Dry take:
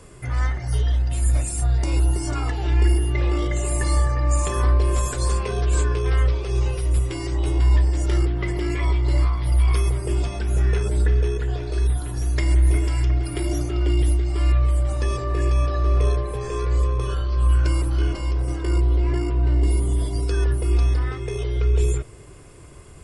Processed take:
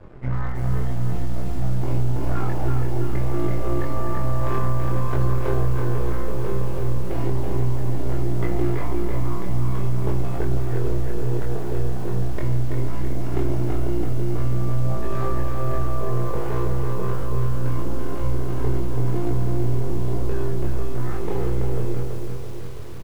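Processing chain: LPF 1200 Hz 12 dB/oct; bell 220 Hz -6.5 dB 0.33 oct; limiter -14.5 dBFS, peak gain reduction 5 dB; compressor 5:1, threshold -22 dBFS, peak gain reduction 5.5 dB; half-wave rectifier; doubler 23 ms -2.5 dB; lo-fi delay 0.331 s, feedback 55%, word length 8-bit, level -5 dB; gain +5 dB

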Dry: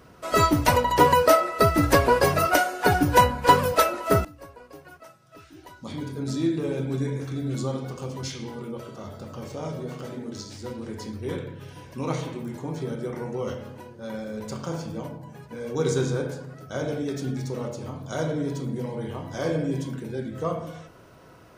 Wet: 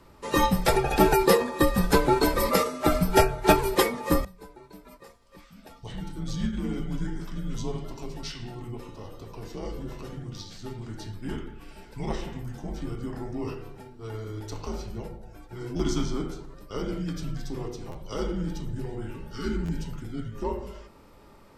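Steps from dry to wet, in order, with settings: frequency shift -110 Hz; spectral repair 19.11–19.76, 450–1100 Hz after; formant shift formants -2 st; stuck buffer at 15.76/17.91/19.65, samples 512, times 2; gain -2 dB

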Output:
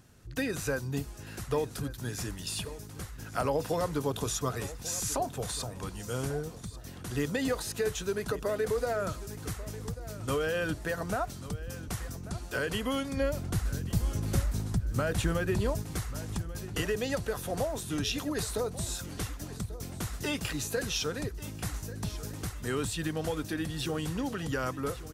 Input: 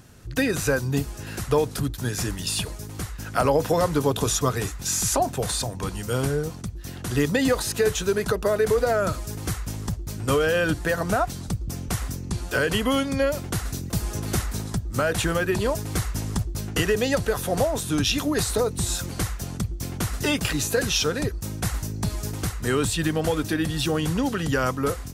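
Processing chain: 13.17–15.82 low shelf 220 Hz +9 dB; feedback echo 1.14 s, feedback 32%, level -16 dB; gain -9 dB

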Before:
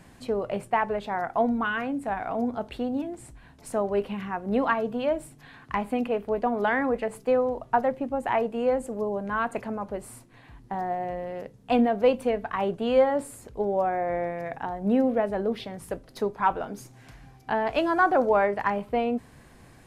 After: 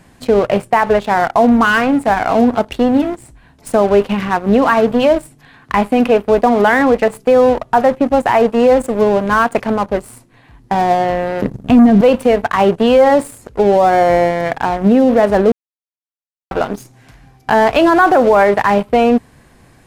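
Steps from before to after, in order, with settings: 11.42–12.01 resonant low shelf 390 Hz +12 dB, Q 1.5; sample leveller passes 2; 15.52–16.51 mute; limiter -12 dBFS, peak gain reduction 12 dB; gain +9 dB

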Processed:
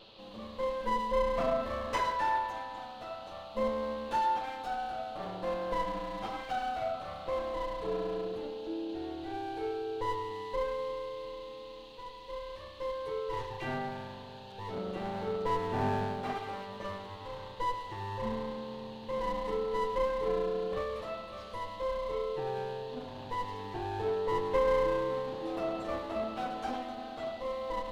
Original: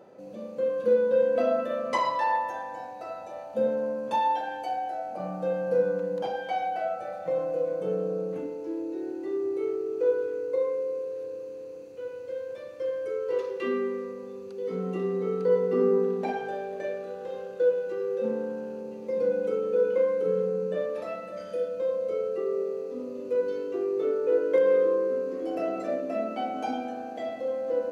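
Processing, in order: minimum comb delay 9.1 ms; band noise 2600–4400 Hz -54 dBFS; gain -4 dB

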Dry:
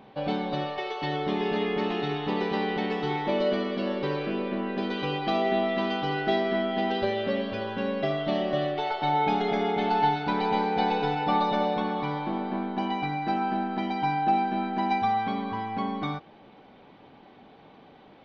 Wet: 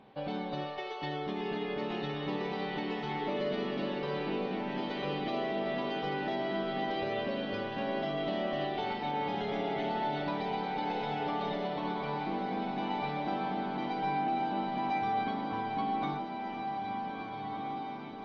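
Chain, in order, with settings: limiter -20 dBFS, peak gain reduction 7 dB; on a send: diffused feedback echo 1.685 s, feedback 55%, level -4.5 dB; on the sum: gain -6 dB; MP3 32 kbps 22050 Hz

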